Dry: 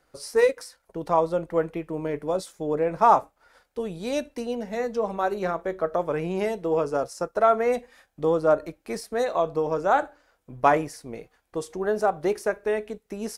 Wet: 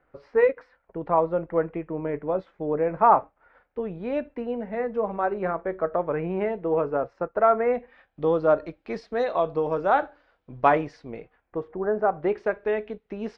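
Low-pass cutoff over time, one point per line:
low-pass 24 dB/octave
7.75 s 2.3 kHz
8.30 s 3.9 kHz
11.00 s 3.9 kHz
11.84 s 1.5 kHz
12.47 s 3.4 kHz

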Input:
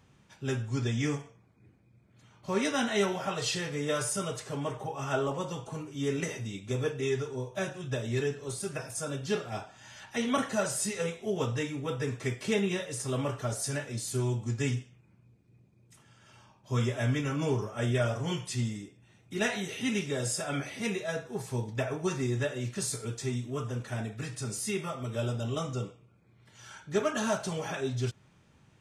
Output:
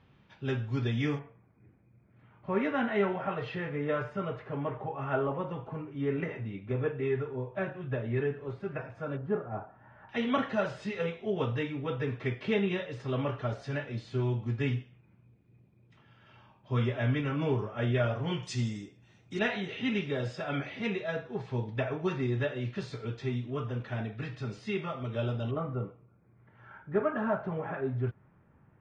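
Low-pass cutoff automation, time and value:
low-pass 24 dB/octave
3.9 kHz
from 1.19 s 2.3 kHz
from 9.17 s 1.4 kHz
from 10.09 s 3.4 kHz
from 18.43 s 6.3 kHz
from 19.39 s 3.6 kHz
from 25.51 s 1.8 kHz

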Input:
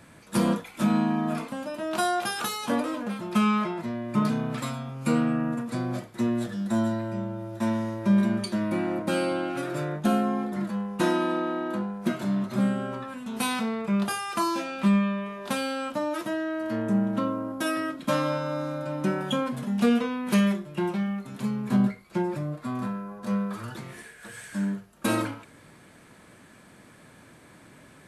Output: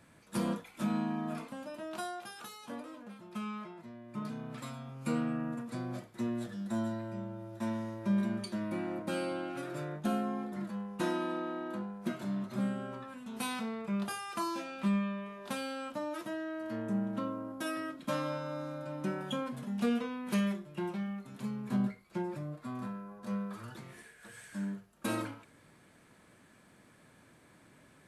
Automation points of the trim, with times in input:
1.78 s -9.5 dB
2.23 s -17 dB
4.04 s -17 dB
4.92 s -9 dB

